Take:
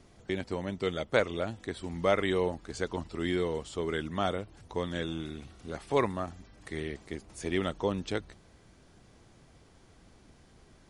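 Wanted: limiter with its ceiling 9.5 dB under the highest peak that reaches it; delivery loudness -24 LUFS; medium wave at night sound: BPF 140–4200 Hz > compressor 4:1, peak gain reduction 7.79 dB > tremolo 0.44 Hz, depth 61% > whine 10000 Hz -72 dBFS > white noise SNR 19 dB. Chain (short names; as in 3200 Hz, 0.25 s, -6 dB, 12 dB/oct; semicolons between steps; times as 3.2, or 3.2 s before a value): limiter -21 dBFS; BPF 140–4200 Hz; compressor 4:1, threshold -35 dBFS; tremolo 0.44 Hz, depth 61%; whine 10000 Hz -72 dBFS; white noise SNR 19 dB; gain +20 dB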